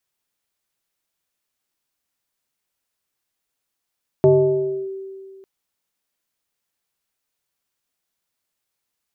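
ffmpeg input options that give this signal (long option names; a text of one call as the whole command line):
ffmpeg -f lavfi -i "aevalsrc='0.398*pow(10,-3*t/2.11)*sin(2*PI*386*t+0.87*clip(1-t/0.65,0,1)*sin(2*PI*0.63*386*t))':duration=1.2:sample_rate=44100" out.wav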